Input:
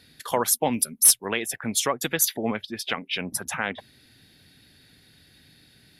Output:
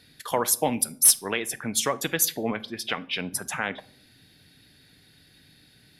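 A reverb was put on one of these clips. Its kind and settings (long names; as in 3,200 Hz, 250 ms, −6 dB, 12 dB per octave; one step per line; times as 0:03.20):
rectangular room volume 820 cubic metres, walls furnished, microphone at 0.44 metres
level −1 dB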